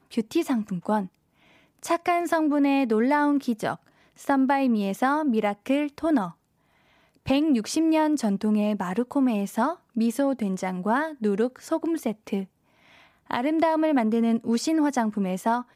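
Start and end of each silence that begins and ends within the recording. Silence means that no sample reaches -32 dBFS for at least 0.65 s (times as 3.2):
1.05–1.83
6.29–7.27
12.44–13.31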